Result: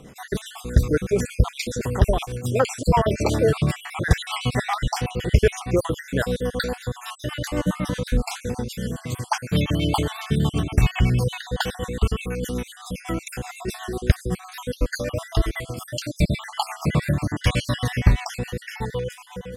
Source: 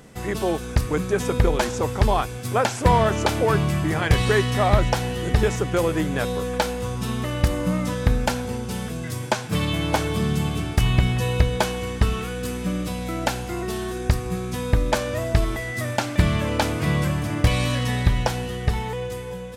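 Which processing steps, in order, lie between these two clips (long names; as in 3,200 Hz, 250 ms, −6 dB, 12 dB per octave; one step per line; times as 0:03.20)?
time-frequency cells dropped at random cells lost 54%
rotating-speaker cabinet horn 8 Hz
level +4.5 dB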